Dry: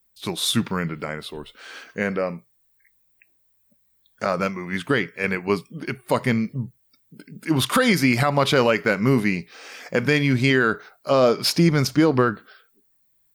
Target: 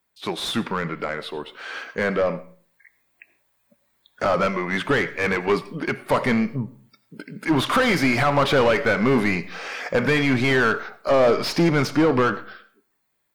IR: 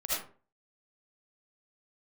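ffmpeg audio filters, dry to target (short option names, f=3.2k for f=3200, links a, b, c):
-filter_complex "[0:a]dynaudnorm=f=530:g=7:m=7dB,asplit=2[a][b];[b]highpass=f=720:p=1,volume=22dB,asoftclip=type=tanh:threshold=-3dB[c];[a][c]amix=inputs=2:normalize=0,lowpass=f=1.4k:p=1,volume=-6dB,asplit=2[d][e];[1:a]atrim=start_sample=2205,asetrate=38808,aresample=44100[f];[e][f]afir=irnorm=-1:irlink=0,volume=-22.5dB[g];[d][g]amix=inputs=2:normalize=0,volume=-7.5dB"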